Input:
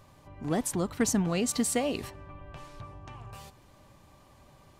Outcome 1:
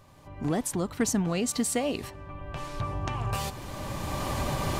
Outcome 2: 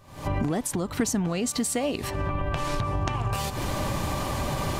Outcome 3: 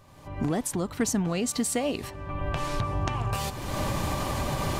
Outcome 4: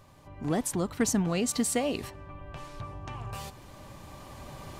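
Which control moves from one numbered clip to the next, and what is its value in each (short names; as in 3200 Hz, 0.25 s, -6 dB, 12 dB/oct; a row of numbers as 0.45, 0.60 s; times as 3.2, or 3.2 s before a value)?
recorder AGC, rising by: 14, 91, 34, 5 dB/s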